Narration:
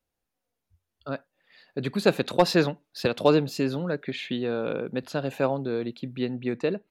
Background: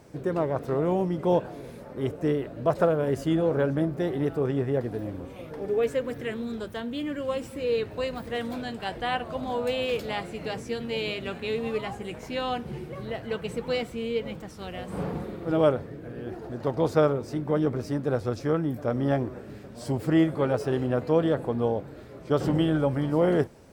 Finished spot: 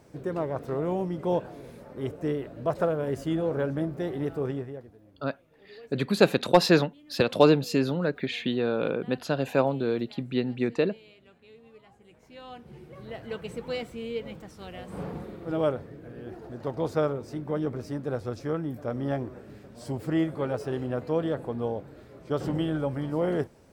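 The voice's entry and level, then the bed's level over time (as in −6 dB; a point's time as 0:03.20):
4.15 s, +1.5 dB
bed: 0:04.51 −3.5 dB
0:04.98 −23.5 dB
0:11.84 −23.5 dB
0:13.23 −4.5 dB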